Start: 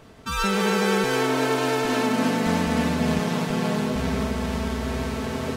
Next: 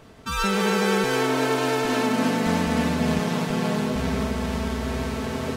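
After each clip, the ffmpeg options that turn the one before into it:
-af anull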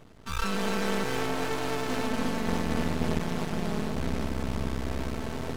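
-af "lowshelf=f=160:g=8,aeval=exprs='max(val(0),0)':c=same,volume=-4.5dB"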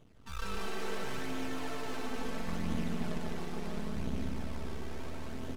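-filter_complex "[0:a]flanger=delay=0.3:depth=2.3:regen=42:speed=0.73:shape=sinusoidal,asplit=2[a][b];[b]aecho=0:1:148.7|221.6:0.631|0.355[c];[a][c]amix=inputs=2:normalize=0,volume=-6.5dB"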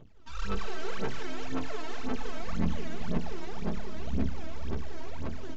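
-af "aphaser=in_gain=1:out_gain=1:delay=3.2:decay=0.75:speed=1.9:type=sinusoidal,aresample=16000,aresample=44100,volume=-3dB"

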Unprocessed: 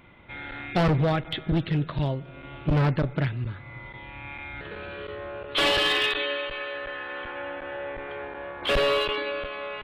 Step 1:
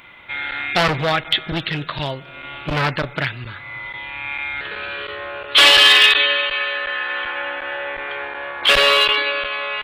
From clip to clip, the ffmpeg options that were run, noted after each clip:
-af "tiltshelf=f=700:g=-9.5,volume=6dB"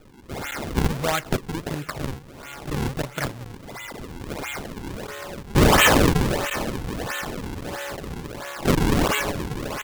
-af "acrusher=samples=41:mix=1:aa=0.000001:lfo=1:lforange=65.6:lforate=1.5,volume=-5dB"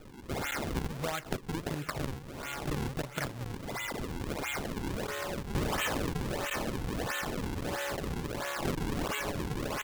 -af "acompressor=threshold=-31dB:ratio=6"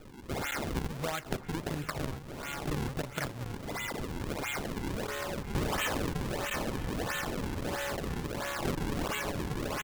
-filter_complex "[0:a]asplit=2[a][b];[b]adelay=991.3,volume=-14dB,highshelf=f=4k:g=-22.3[c];[a][c]amix=inputs=2:normalize=0"

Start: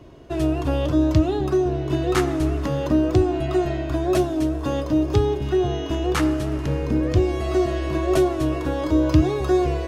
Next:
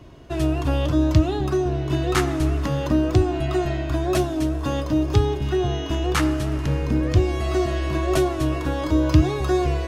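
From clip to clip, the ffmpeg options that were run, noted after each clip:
-af "equalizer=f=440:w=0.88:g=-5.5,volume=2.5dB"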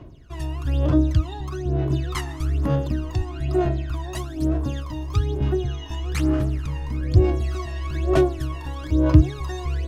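-af "aphaser=in_gain=1:out_gain=1:delay=1.1:decay=0.78:speed=1.1:type=sinusoidal,volume=-10dB"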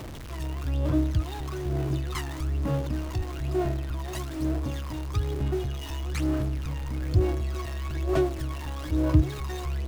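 -af "aeval=exprs='val(0)+0.5*0.0422*sgn(val(0))':c=same,volume=-7dB"

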